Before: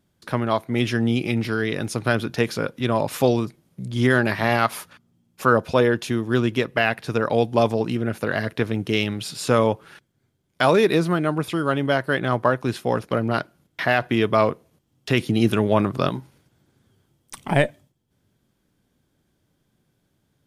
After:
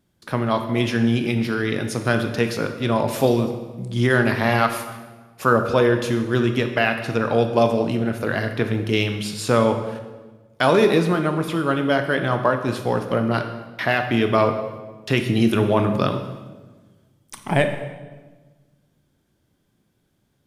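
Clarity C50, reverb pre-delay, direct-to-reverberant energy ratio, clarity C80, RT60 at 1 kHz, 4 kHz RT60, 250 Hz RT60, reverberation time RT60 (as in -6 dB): 8.0 dB, 17 ms, 6.0 dB, 10.0 dB, 1.2 s, 1.0 s, 1.6 s, 1.3 s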